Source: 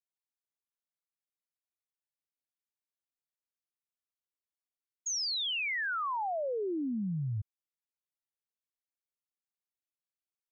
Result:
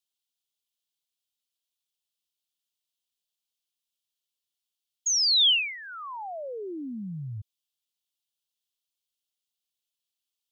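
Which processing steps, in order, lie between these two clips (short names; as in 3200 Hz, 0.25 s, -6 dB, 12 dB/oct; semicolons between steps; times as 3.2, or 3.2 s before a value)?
resonant high shelf 2400 Hz +9.5 dB, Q 3; gain -2 dB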